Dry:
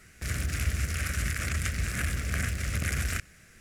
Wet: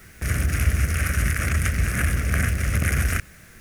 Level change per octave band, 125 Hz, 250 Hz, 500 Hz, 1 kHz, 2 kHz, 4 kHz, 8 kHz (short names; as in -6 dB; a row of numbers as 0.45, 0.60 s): +8.5, +8.5, +8.5, +8.0, +7.0, +2.0, +4.5 dB